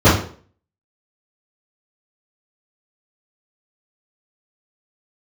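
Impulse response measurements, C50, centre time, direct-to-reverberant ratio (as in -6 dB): 4.5 dB, 40 ms, -15.0 dB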